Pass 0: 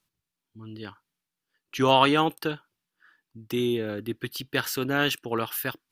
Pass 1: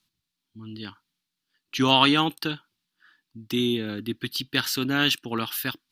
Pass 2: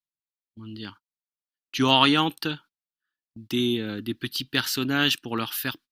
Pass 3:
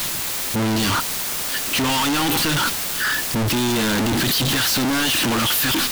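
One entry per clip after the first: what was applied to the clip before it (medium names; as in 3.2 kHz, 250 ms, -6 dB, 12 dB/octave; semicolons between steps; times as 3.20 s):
graphic EQ 250/500/4000 Hz +6/-8/+9 dB
gate -45 dBFS, range -27 dB
one-bit comparator; trim +8 dB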